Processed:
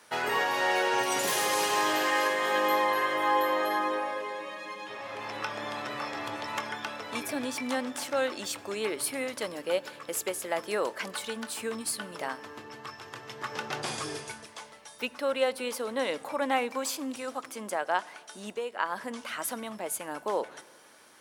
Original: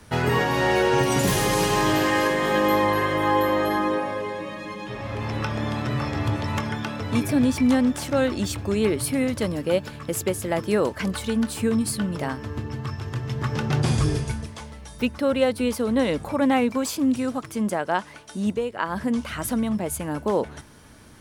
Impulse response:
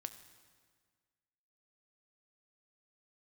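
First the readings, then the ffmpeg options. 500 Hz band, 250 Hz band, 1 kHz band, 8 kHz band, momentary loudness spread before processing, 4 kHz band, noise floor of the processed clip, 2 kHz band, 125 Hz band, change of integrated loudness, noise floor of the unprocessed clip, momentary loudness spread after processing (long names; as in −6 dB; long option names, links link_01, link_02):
−7.0 dB, −15.0 dB, −3.5 dB, −3.0 dB, 10 LU, −3.0 dB, −52 dBFS, −3.0 dB, −25.0 dB, −6.5 dB, −43 dBFS, 13 LU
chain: -filter_complex "[0:a]highpass=610,asplit=2[link_01][link_02];[1:a]atrim=start_sample=2205,lowshelf=frequency=460:gain=11.5[link_03];[link_02][link_03]afir=irnorm=-1:irlink=0,volume=-7.5dB[link_04];[link_01][link_04]amix=inputs=2:normalize=0,volume=-5dB"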